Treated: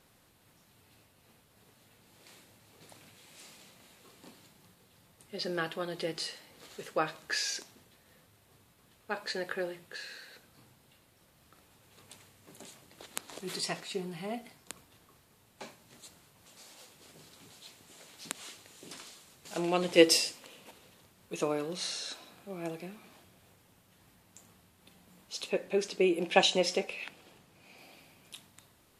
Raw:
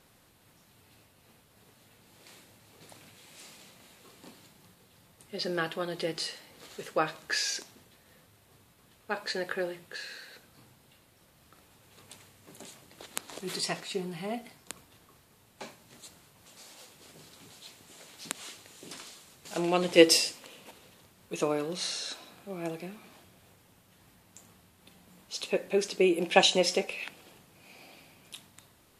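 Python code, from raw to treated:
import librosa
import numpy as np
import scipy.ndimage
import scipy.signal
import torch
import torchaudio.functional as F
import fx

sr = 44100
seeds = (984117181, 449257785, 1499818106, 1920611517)

y = fx.high_shelf(x, sr, hz=9400.0, db=-6.5, at=(25.49, 27.78))
y = y * librosa.db_to_amplitude(-2.5)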